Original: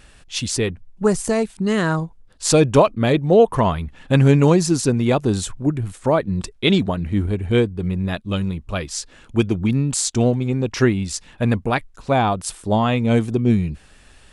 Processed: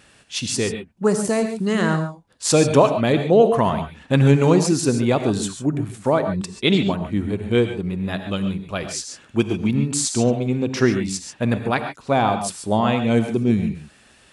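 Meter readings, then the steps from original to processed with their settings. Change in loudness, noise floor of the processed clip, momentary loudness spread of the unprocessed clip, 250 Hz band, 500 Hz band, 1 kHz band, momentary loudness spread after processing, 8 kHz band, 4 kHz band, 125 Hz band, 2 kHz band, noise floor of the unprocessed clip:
-1.0 dB, -53 dBFS, 11 LU, -0.5 dB, -0.5 dB, 0.0 dB, 11 LU, 0.0 dB, 0.0 dB, -2.5 dB, 0.0 dB, -49 dBFS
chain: high-pass 120 Hz 12 dB/octave; gated-style reverb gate 160 ms rising, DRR 7 dB; trim -1 dB

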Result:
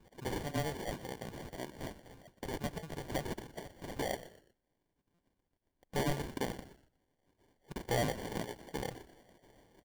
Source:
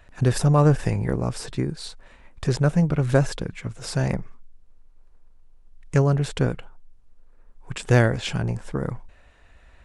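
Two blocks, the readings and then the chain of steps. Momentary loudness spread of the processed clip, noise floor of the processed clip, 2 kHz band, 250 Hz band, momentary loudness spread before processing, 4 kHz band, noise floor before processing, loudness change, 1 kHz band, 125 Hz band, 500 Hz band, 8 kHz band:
13 LU, -83 dBFS, -12.5 dB, -16.5 dB, 14 LU, -9.5 dB, -53 dBFS, -16.5 dB, -10.0 dB, -22.0 dB, -13.5 dB, -10.5 dB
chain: random holes in the spectrogram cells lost 30%; band-pass sweep 2.5 kHz -> 1 kHz, 3.31–6.63 s; sample-rate reducer 1.3 kHz, jitter 0%; saturation -31.5 dBFS, distortion -8 dB; frequency-shifting echo 121 ms, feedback 33%, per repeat -64 Hz, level -15 dB; buffer glitch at 5.14 s, samples 256, times 7; trim +6 dB

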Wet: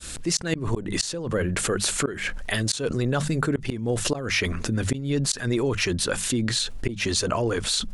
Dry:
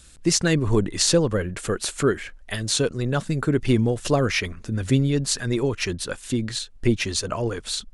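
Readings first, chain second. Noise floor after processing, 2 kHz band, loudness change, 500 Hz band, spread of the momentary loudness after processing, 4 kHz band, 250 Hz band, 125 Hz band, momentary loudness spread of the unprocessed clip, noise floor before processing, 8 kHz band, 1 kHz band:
-36 dBFS, +1.0 dB, -2.0 dB, -3.0 dB, 4 LU, 0.0 dB, -3.5 dB, -3.5 dB, 8 LU, -47 dBFS, -0.5 dB, -1.0 dB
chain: fade-in on the opening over 0.51 s; bass shelf 77 Hz -5.5 dB; hum notches 50/100/150/200 Hz; inverted gate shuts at -11 dBFS, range -30 dB; level flattener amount 70%; trim -3 dB

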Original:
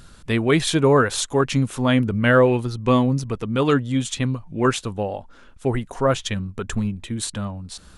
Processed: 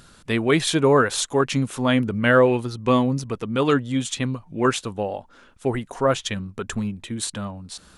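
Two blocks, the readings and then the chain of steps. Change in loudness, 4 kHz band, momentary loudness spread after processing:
-1.0 dB, 0.0 dB, 12 LU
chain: bass shelf 91 Hz -11.5 dB

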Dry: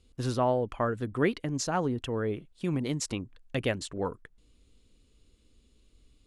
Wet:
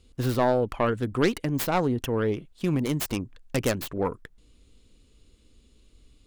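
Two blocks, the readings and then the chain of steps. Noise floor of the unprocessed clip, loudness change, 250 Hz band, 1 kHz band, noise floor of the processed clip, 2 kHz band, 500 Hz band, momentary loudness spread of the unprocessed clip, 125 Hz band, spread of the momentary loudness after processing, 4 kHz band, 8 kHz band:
-65 dBFS, +4.0 dB, +4.5 dB, +3.5 dB, -60 dBFS, +3.5 dB, +4.0 dB, 7 LU, +4.0 dB, 7 LU, +3.0 dB, +1.0 dB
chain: tracing distortion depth 0.46 ms; in parallel at -2 dB: peak limiter -21.5 dBFS, peak gain reduction 7.5 dB

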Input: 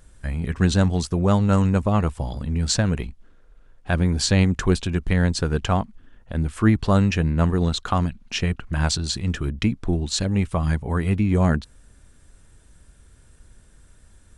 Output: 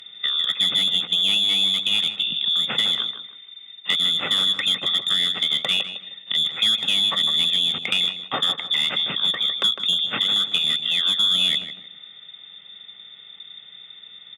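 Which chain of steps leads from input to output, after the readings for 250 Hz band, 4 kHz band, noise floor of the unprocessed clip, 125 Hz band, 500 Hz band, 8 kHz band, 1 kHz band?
-18.0 dB, +16.5 dB, -53 dBFS, -24.5 dB, -13.5 dB, -5.5 dB, -6.5 dB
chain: tracing distortion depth 0.41 ms; in parallel at +0.5 dB: peak limiter -13 dBFS, peak gain reduction 7.5 dB; on the sum: frequency inversion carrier 3.6 kHz; peaking EQ 660 Hz -8 dB 0.56 oct; one-sided clip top -10.5 dBFS, bottom -7 dBFS; tilt EQ -2 dB/octave; compression 3:1, threshold -26 dBFS, peak gain reduction 9.5 dB; high-pass 170 Hz 24 dB/octave; comb 1.5 ms, depth 50%; filtered feedback delay 155 ms, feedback 31%, low-pass 2.2 kHz, level -7.5 dB; trim +4 dB

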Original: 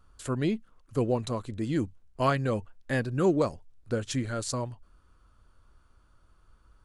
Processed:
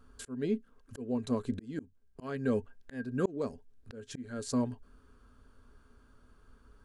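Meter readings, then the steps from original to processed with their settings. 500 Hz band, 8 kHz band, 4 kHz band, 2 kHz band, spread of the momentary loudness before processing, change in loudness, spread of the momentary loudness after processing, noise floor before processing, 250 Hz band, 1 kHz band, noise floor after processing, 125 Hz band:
-6.5 dB, -7.5 dB, -9.5 dB, -10.0 dB, 9 LU, -6.0 dB, 17 LU, -63 dBFS, -3.5 dB, -12.0 dB, -64 dBFS, -10.0 dB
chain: small resonant body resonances 250/420/1600 Hz, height 15 dB, ringing for 90 ms; slow attack 760 ms

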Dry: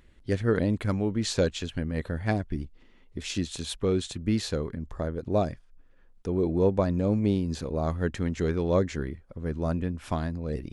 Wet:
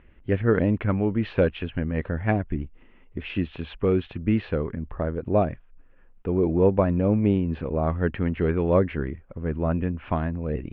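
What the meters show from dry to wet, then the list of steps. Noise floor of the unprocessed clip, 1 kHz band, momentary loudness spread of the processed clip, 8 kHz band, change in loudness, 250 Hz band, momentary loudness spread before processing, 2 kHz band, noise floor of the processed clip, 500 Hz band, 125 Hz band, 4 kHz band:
-57 dBFS, +4.5 dB, 11 LU, under -40 dB, +3.5 dB, +3.5 dB, 10 LU, +4.0 dB, -53 dBFS, +4.0 dB, +3.5 dB, -7.5 dB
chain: elliptic low-pass 2.8 kHz, stop band 70 dB; trim +4.5 dB

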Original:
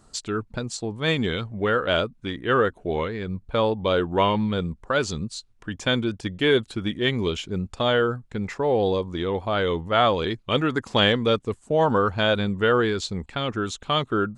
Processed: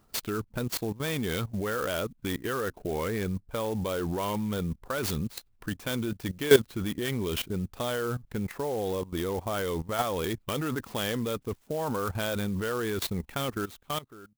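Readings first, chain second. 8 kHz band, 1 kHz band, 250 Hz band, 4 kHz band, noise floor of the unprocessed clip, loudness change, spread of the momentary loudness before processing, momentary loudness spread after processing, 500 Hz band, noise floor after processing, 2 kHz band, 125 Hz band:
+1.0 dB, -9.5 dB, -5.5 dB, -9.5 dB, -57 dBFS, -7.0 dB, 9 LU, 4 LU, -7.0 dB, -64 dBFS, -8.5 dB, -5.0 dB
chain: fade out at the end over 1.57 s; level held to a coarse grid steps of 17 dB; sampling jitter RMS 0.038 ms; trim +4 dB

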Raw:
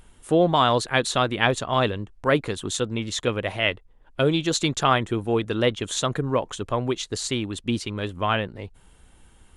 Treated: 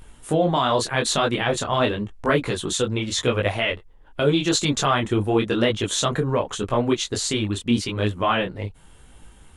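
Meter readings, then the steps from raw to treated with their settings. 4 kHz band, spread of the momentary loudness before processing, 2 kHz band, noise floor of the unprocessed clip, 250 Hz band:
+2.0 dB, 7 LU, +0.5 dB, -54 dBFS, +2.5 dB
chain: peak limiter -14 dBFS, peak gain reduction 11 dB; detune thickener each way 30 cents; trim +8 dB

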